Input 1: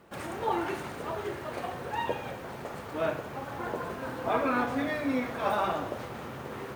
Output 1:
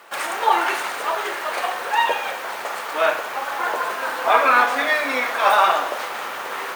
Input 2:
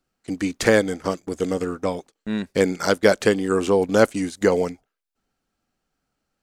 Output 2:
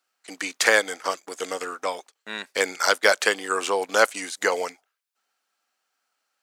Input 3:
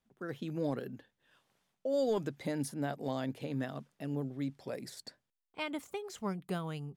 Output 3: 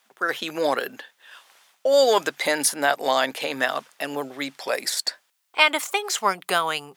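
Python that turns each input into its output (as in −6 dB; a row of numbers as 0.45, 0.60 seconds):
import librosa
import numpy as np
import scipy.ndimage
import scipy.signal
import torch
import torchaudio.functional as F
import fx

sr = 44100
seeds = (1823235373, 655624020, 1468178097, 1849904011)

y = scipy.signal.sosfilt(scipy.signal.butter(2, 890.0, 'highpass', fs=sr, output='sos'), x)
y = librosa.util.normalize(y) * 10.0 ** (-1.5 / 20.0)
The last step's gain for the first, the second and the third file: +16.5, +5.0, +23.0 decibels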